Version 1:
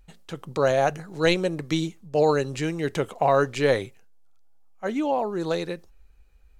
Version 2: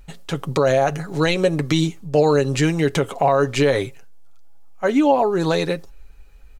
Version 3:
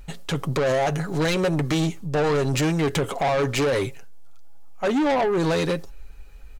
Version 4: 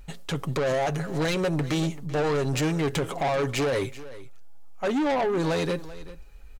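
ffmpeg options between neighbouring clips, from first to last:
-filter_complex "[0:a]aecho=1:1:7.2:0.44,asplit=2[a][b];[b]acompressor=threshold=-28dB:ratio=6,volume=-1.5dB[c];[a][c]amix=inputs=2:normalize=0,alimiter=limit=-12dB:level=0:latency=1:release=78,volume=5dB"
-af "asoftclip=type=tanh:threshold=-21.5dB,volume=3dB"
-af "aecho=1:1:387:0.141,volume=-3.5dB"

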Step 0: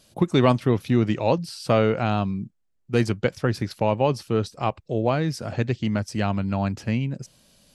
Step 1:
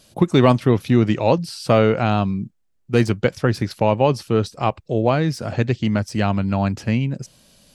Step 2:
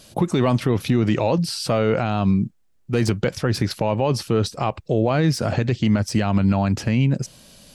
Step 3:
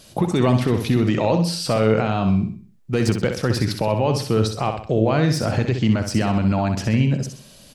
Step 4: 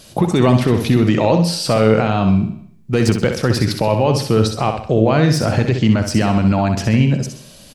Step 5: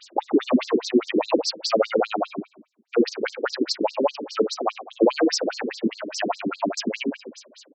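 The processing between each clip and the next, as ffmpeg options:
-af "deesser=0.75,volume=4.5dB"
-af "alimiter=level_in=14dB:limit=-1dB:release=50:level=0:latency=1,volume=-8.5dB"
-af "aecho=1:1:64|128|192|256|320:0.447|0.179|0.0715|0.0286|0.0114"
-af "aecho=1:1:77|154|231|308|385:0.112|0.0662|0.0391|0.023|0.0136,volume=4.5dB"
-af "afftfilt=real='re*between(b*sr/1024,300*pow(5800/300,0.5+0.5*sin(2*PI*4.9*pts/sr))/1.41,300*pow(5800/300,0.5+0.5*sin(2*PI*4.9*pts/sr))*1.41)':imag='im*between(b*sr/1024,300*pow(5800/300,0.5+0.5*sin(2*PI*4.9*pts/sr))/1.41,300*pow(5800/300,0.5+0.5*sin(2*PI*4.9*pts/sr))*1.41)':win_size=1024:overlap=0.75,volume=2dB"

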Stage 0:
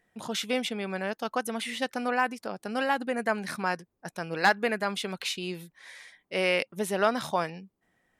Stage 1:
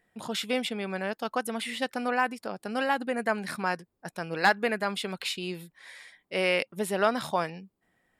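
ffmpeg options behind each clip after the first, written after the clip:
-af "bandreject=f=6.1k:w=7.4"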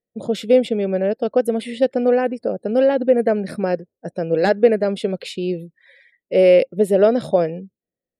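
-af "afftdn=nr=28:nf=-49,lowshelf=f=730:t=q:w=3:g=10.5"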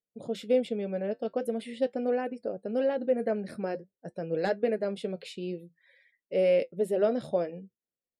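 -af "flanger=delay=6.8:depth=2.6:regen=-62:speed=0.46:shape=sinusoidal,volume=-7.5dB"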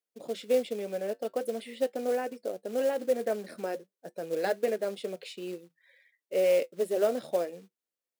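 -af "acrusher=bits=5:mode=log:mix=0:aa=0.000001,highpass=310"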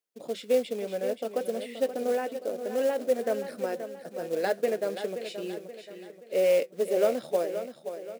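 -af "aecho=1:1:527|1054|1581|2108|2635:0.316|0.136|0.0585|0.0251|0.0108,volume=1.5dB"

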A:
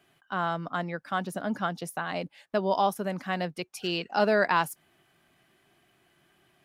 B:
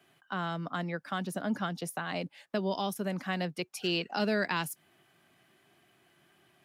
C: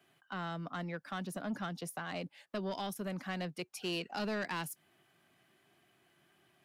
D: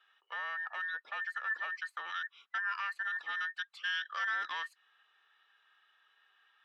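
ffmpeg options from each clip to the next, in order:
-filter_complex "[0:a]highpass=86,acrossover=split=370|1900[a][b][c];[b]acompressor=threshold=-35dB:ratio=6[d];[a][d][c]amix=inputs=3:normalize=0"
-af "asoftclip=type=tanh:threshold=-26dB,volume=-4dB"
-af "afftfilt=real='real(if(between(b,1,1012),(2*floor((b-1)/92)+1)*92-b,b),0)':imag='imag(if(between(b,1,1012),(2*floor((b-1)/92)+1)*92-b,b),0)*if(between(b,1,1012),-1,1)':win_size=2048:overlap=0.75,asuperpass=centerf=1900:order=4:qfactor=0.75,volume=2.5dB"

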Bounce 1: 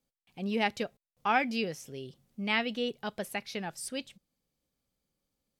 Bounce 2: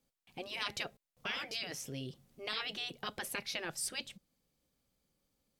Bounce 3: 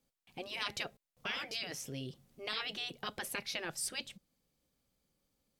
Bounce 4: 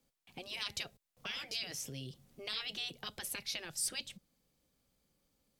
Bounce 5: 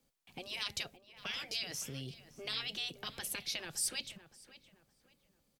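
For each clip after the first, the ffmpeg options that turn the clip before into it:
-af "afftfilt=real='re*lt(hypot(re,im),0.0631)':imag='im*lt(hypot(re,im),0.0631)':win_size=1024:overlap=0.75,volume=3dB"
-af anull
-filter_complex "[0:a]acrossover=split=130|3000[a][b][c];[b]acompressor=threshold=-50dB:ratio=4[d];[a][d][c]amix=inputs=3:normalize=0,volume=2.5dB"
-filter_complex "[0:a]asplit=2[a][b];[b]adelay=566,lowpass=f=2.2k:p=1,volume=-13.5dB,asplit=2[c][d];[d]adelay=566,lowpass=f=2.2k:p=1,volume=0.36,asplit=2[e][f];[f]adelay=566,lowpass=f=2.2k:p=1,volume=0.36[g];[a][c][e][g]amix=inputs=4:normalize=0,volume=1dB"

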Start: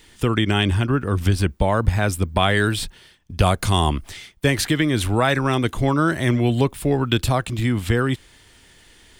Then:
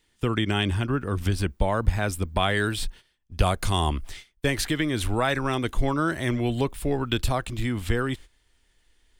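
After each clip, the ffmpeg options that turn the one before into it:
-af "asubboost=boost=5:cutoff=50,agate=range=-13dB:threshold=-35dB:ratio=16:detection=peak,volume=-5dB"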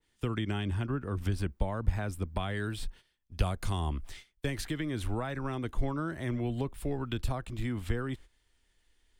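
-filter_complex "[0:a]acrossover=split=250[a][b];[b]acompressor=threshold=-29dB:ratio=3[c];[a][c]amix=inputs=2:normalize=0,adynamicequalizer=threshold=0.00501:dfrequency=2100:dqfactor=0.7:tfrequency=2100:tqfactor=0.7:attack=5:release=100:ratio=0.375:range=3.5:mode=cutabove:tftype=highshelf,volume=-6dB"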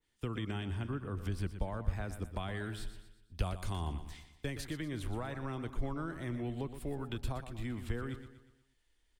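-af "aecho=1:1:120|240|360|480|600:0.282|0.127|0.0571|0.0257|0.0116,volume=-5.5dB"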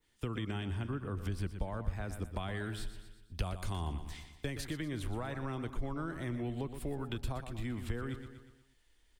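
-af "acompressor=threshold=-48dB:ratio=1.5,volume=5.5dB"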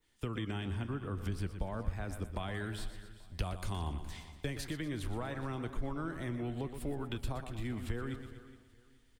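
-af "flanger=delay=2.5:depth=4.5:regen=87:speed=1:shape=triangular,aecho=1:1:417|834|1251:0.133|0.0413|0.0128,volume=4.5dB"

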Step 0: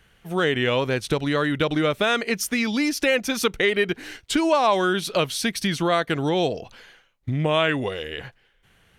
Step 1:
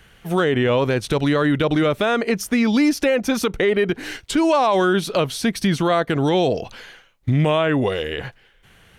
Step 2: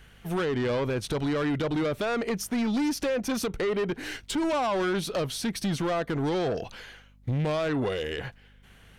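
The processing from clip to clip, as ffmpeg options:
-filter_complex "[0:a]acrossover=split=1300[a][b];[a]alimiter=limit=-18.5dB:level=0:latency=1:release=27[c];[b]acompressor=threshold=-35dB:ratio=6[d];[c][d]amix=inputs=2:normalize=0,volume=7.5dB"
-af "asoftclip=type=tanh:threshold=-18.5dB,aeval=exprs='val(0)+0.00282*(sin(2*PI*50*n/s)+sin(2*PI*2*50*n/s)/2+sin(2*PI*3*50*n/s)/3+sin(2*PI*4*50*n/s)/4+sin(2*PI*5*50*n/s)/5)':c=same,volume=-4.5dB"

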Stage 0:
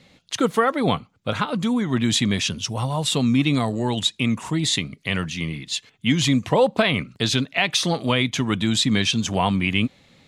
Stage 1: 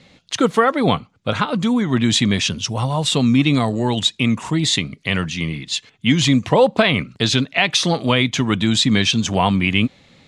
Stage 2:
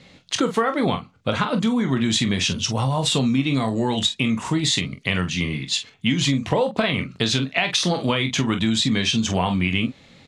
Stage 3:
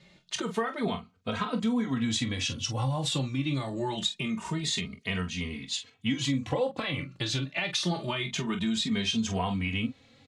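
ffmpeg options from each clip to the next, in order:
-af "lowpass=8.5k,volume=4dB"
-af "aecho=1:1:22|45:0.335|0.299,acompressor=threshold=-17dB:ratio=6"
-filter_complex "[0:a]asplit=2[a][b];[b]adelay=2.9,afreqshift=0.25[c];[a][c]amix=inputs=2:normalize=1,volume=-6dB"

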